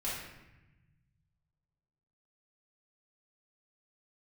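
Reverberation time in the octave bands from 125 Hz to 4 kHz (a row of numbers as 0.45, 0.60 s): 2.5, 1.8, 1.0, 0.95, 1.1, 0.75 s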